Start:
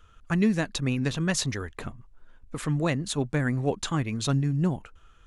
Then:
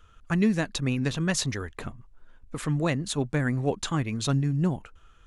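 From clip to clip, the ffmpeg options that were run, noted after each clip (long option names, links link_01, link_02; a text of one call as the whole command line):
ffmpeg -i in.wav -af anull out.wav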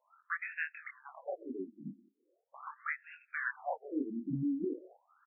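ffmpeg -i in.wav -filter_complex "[0:a]flanger=delay=20:depth=6.4:speed=0.7,asplit=2[link_01][link_02];[link_02]adelay=180,highpass=300,lowpass=3400,asoftclip=type=hard:threshold=-23.5dB,volume=-18dB[link_03];[link_01][link_03]amix=inputs=2:normalize=0,afftfilt=real='re*between(b*sr/1024,240*pow(2000/240,0.5+0.5*sin(2*PI*0.4*pts/sr))/1.41,240*pow(2000/240,0.5+0.5*sin(2*PI*0.4*pts/sr))*1.41)':imag='im*between(b*sr/1024,240*pow(2000/240,0.5+0.5*sin(2*PI*0.4*pts/sr))/1.41,240*pow(2000/240,0.5+0.5*sin(2*PI*0.4*pts/sr))*1.41)':win_size=1024:overlap=0.75,volume=1.5dB" out.wav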